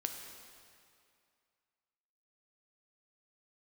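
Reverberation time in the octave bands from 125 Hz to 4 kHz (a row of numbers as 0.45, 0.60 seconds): 2.2, 2.3, 2.3, 2.4, 2.2, 2.0 seconds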